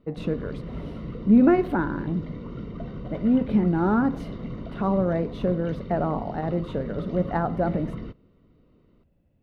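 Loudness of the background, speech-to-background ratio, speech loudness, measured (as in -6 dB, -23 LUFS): -36.5 LUFS, 11.5 dB, -25.0 LUFS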